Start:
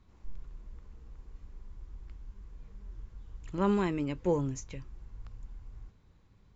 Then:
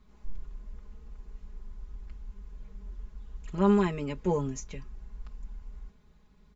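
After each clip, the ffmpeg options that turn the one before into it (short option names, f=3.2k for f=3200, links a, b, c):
-af "aecho=1:1:4.8:0.85"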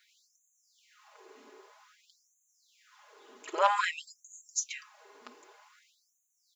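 -af "aeval=exprs='0.282*(cos(1*acos(clip(val(0)/0.282,-1,1)))-cos(1*PI/2))+0.0355*(cos(5*acos(clip(val(0)/0.282,-1,1)))-cos(5*PI/2))':c=same,lowshelf=f=110:g=10,afftfilt=real='re*gte(b*sr/1024,250*pow(6200/250,0.5+0.5*sin(2*PI*0.52*pts/sr)))':imag='im*gte(b*sr/1024,250*pow(6200/250,0.5+0.5*sin(2*PI*0.52*pts/sr)))':win_size=1024:overlap=0.75,volume=6.5dB"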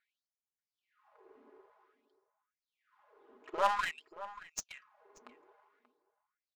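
-filter_complex "[0:a]adynamicsmooth=sensitivity=5:basefreq=1.2k,aeval=exprs='0.282*(cos(1*acos(clip(val(0)/0.282,-1,1)))-cos(1*PI/2))+0.00891*(cos(8*acos(clip(val(0)/0.282,-1,1)))-cos(8*PI/2))':c=same,asplit=2[a][b];[b]adelay=583.1,volume=-15dB,highshelf=f=4k:g=-13.1[c];[a][c]amix=inputs=2:normalize=0,volume=-4dB"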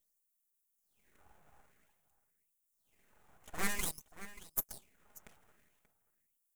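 -af "aeval=exprs='abs(val(0))':c=same,aexciter=amount=7:drive=4.6:freq=6.5k,asoftclip=type=tanh:threshold=-18.5dB,volume=-2dB"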